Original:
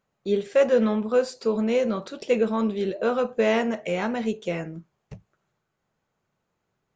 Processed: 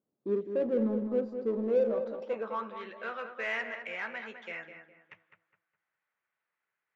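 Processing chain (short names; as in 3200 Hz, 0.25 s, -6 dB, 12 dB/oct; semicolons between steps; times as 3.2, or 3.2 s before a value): spectral gain 5.01–5.35, 880–3800 Hz +10 dB; band-pass sweep 300 Hz -> 1900 Hz, 1.46–2.87; in parallel at -8 dB: hard clip -33.5 dBFS, distortion -5 dB; on the sum: air absorption 62 m; on a send: darkening echo 0.206 s, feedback 34%, low-pass 2300 Hz, level -8 dB; on the sum: gain -2.5 dB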